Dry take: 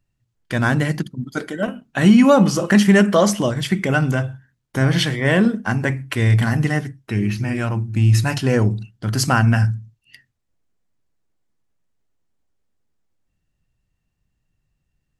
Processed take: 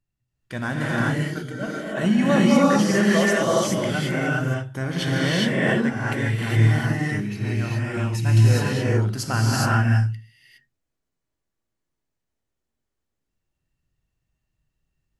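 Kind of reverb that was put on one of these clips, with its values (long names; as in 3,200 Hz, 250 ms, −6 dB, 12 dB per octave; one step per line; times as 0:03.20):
reverb whose tail is shaped and stops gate 440 ms rising, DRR −6 dB
level −9.5 dB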